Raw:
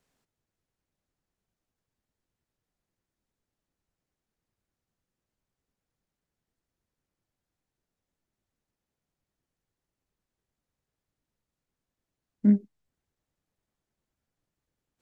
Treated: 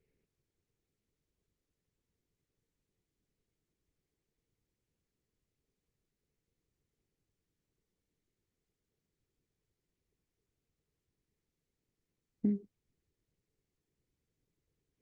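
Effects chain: EQ curve 160 Hz 0 dB, 230 Hz -6 dB, 450 Hz +4 dB, 680 Hz -23 dB, 1100 Hz -28 dB, 2200 Hz -3 dB, 4400 Hz -29 dB; compressor 20:1, threshold -30 dBFS, peak gain reduction 12 dB; gain +2.5 dB; Opus 32 kbps 48000 Hz

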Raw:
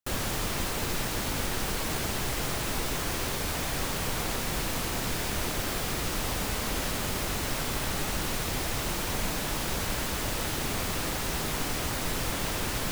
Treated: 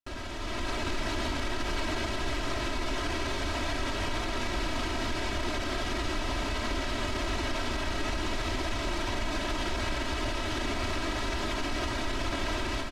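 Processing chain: LPF 4400 Hz 12 dB/oct; comb 3.1 ms, depth 83%; limiter -24 dBFS, peak gain reduction 9 dB; AGC gain up to 8 dB; gain -6 dB

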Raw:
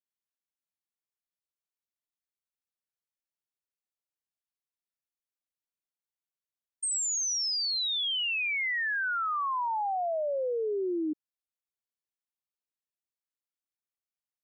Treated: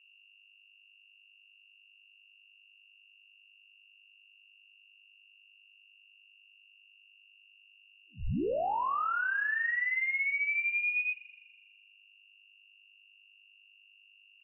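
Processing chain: hum 50 Hz, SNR 25 dB; reverse echo 33 ms -6 dB; spring tank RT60 1.6 s, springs 41 ms, chirp 65 ms, DRR 16 dB; inverted band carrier 2800 Hz; gain -2 dB

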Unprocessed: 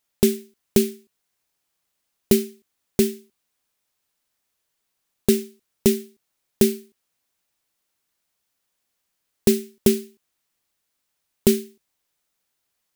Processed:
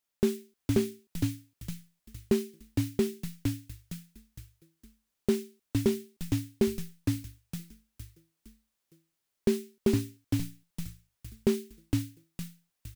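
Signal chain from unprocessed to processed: frequency-shifting echo 0.461 s, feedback 37%, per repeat -110 Hz, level -3 dB; slew limiter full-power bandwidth 200 Hz; gain -8 dB

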